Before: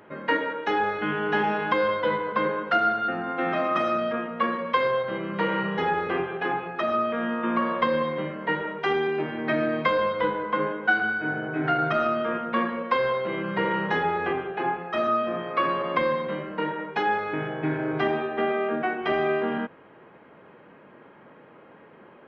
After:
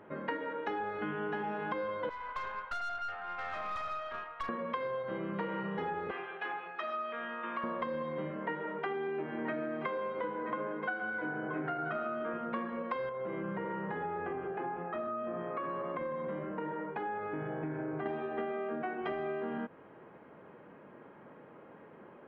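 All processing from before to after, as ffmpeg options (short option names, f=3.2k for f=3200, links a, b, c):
-filter_complex "[0:a]asettb=1/sr,asplit=3[a][b][c];[a]atrim=end=2.094[d];[b]atrim=start=2.09:end=4.49,asetpts=PTS-STARTPTS,afade=t=in:d=0.004:c=qsin,afade=t=out:st=2.396:d=0.004:c=qsin,highpass=f=830:w=0.5412,highpass=f=830:w=1.3066,aeval=exprs='(tanh(22.4*val(0)+0.45)-tanh(0.45))/22.4':c=same[e];[c]atrim=start=4.486[f];[d][e]acrossfade=d=0.004:c1=hsin:c2=qsin[g];[g][f]acrossfade=d=0.004:c1=qsin:c2=hsin,asettb=1/sr,asplit=3[h][i][j];[h]atrim=end=6.114[k];[i]atrim=start=6.11:end=7.64,asetpts=PTS-STARTPTS,afade=t=in:d=0.004:c=qsin,afade=t=out:st=1.526:d=0.004:c=qsin,bandpass=f=3k:t=q:w=0.56,highshelf=f=4.7k:g=5.5[l];[j]atrim=start=7.636[m];[k][l]acrossfade=d=0.004:c1=hsin:c2=qsin[n];[n][m]acrossfade=d=0.004:c1=qsin:c2=hsin,asettb=1/sr,asplit=3[o][p][q];[o]atrim=end=8.404[r];[p]atrim=start=8.4:end=12.34,asetpts=PTS-STARTPTS,afade=t=in:d=0.004:c=qsin,afade=t=out:st=3.936:d=0.004:c=qsin,highpass=150,lowpass=2.3k,aemphasis=mode=production:type=75kf,aecho=1:1:977:0.266,atrim=end_sample=173754[s];[q]atrim=start=12.336[t];[r][s]acrossfade=d=0.004:c1=hsin:c2=qsin[u];[u][t]acrossfade=d=0.004:c1=qsin:c2=hsin,asettb=1/sr,asplit=3[v][w][x];[v]atrim=end=13.094[y];[w]atrim=start=13.09:end=18.06,asetpts=PTS-STARTPTS,afade=t=in:d=0.004:c=qsin,afade=t=out:st=4.966:d=0.004:c=qsin,acompressor=threshold=-29dB:ratio=2.5:attack=3.2:release=140:knee=1:detection=peak,lowpass=2.2k[z];[x]atrim=start=18.056[aa];[y][z]acrossfade=d=0.004:c1=hsin:c2=qsin[ab];[ab][aa]acrossfade=d=0.004:c1=qsin:c2=hsin,highshelf=f=2.6k:g=-11.5,acompressor=threshold=-31dB:ratio=6,volume=-2.5dB"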